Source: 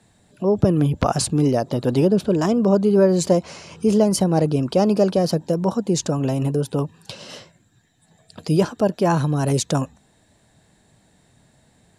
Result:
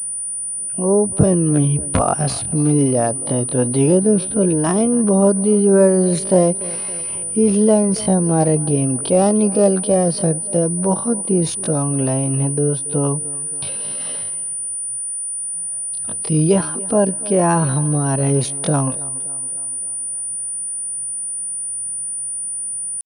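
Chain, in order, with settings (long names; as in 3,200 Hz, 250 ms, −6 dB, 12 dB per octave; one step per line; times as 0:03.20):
tape delay 147 ms, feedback 61%, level −18.5 dB, low-pass 3,400 Hz
tempo change 0.52×
switching amplifier with a slow clock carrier 9,400 Hz
level +2 dB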